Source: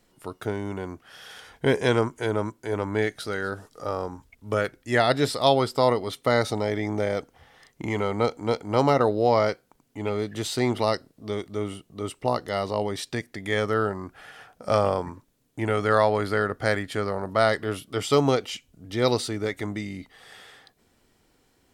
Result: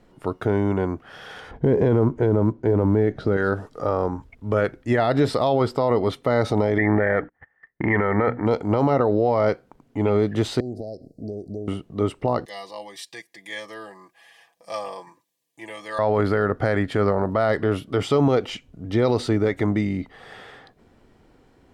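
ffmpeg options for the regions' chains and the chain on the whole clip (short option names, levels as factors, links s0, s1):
-filter_complex "[0:a]asettb=1/sr,asplit=3[s0][s1][s2];[s0]atrim=end=1.514[s3];[s1]atrim=start=1.51:end=3.37,asetpts=PTS-STARTPTS,afade=t=in:d=0.004:c=qsin,afade=t=out:st=1.856:d=0.004:c=qsin,lowpass=5900,tiltshelf=f=900:g=8,acrusher=bits=9:mode=log:mix=0:aa=0.000001[s4];[s2]atrim=start=3.366[s5];[s3][s4]acrossfade=d=0.004:c1=hsin:c2=qsin[s6];[s6][s5]acrossfade=d=0.004:c1=qsin:c2=hsin,asettb=1/sr,asplit=3[s7][s8][s9];[s7]atrim=end=6.784[s10];[s8]atrim=start=6.78:end=8.46,asetpts=PTS-STARTPTS,afade=t=in:d=0.004:c=qsin,afade=t=out:st=1.676:d=0.004:c=qsin,bandreject=f=60:t=h:w=6,bandreject=f=120:t=h:w=6,bandreject=f=180:t=h:w=6,bandreject=f=240:t=h:w=6,bandreject=f=300:t=h:w=6,agate=range=0.0316:threshold=0.00282:ratio=16:release=100:detection=peak,lowpass=f=1800:t=q:w=11[s11];[s9]atrim=start=8.456[s12];[s10][s11]acrossfade=d=0.004:c1=hsin:c2=qsin[s13];[s13][s12]acrossfade=d=0.004:c1=qsin:c2=hsin,asettb=1/sr,asplit=3[s14][s15][s16];[s14]atrim=end=10.604[s17];[s15]atrim=start=10.6:end=11.68,asetpts=PTS-STARTPTS,afade=t=in:d=0.004:c=qsin,afade=t=out:st=1.076:d=0.004:c=qsin,acompressor=threshold=0.0126:ratio=6:attack=3.2:release=140:knee=1:detection=peak,asuperstop=centerf=1800:order=20:qfactor=0.5[s18];[s16]atrim=start=11.676[s19];[s17][s18]acrossfade=d=0.004:c1=hsin:c2=qsin[s20];[s20][s19]acrossfade=d=0.004:c1=qsin:c2=hsin,asettb=1/sr,asplit=3[s21][s22][s23];[s21]atrim=end=12.454[s24];[s22]atrim=start=12.45:end=15.99,asetpts=PTS-STARTPTS,afade=t=in:d=0.004:c=qsin,afade=t=out:st=3.536:d=0.004:c=qsin,asuperstop=centerf=1400:order=8:qfactor=4.5,aderivative,aecho=1:1:6:0.86,atrim=end_sample=156114[s25];[s23]atrim=start=15.986[s26];[s24][s25]acrossfade=d=0.004:c1=hsin:c2=qsin[s27];[s27][s26]acrossfade=d=0.004:c1=qsin:c2=hsin,lowpass=f=1100:p=1,alimiter=level_in=9.44:limit=0.891:release=50:level=0:latency=1,volume=0.355"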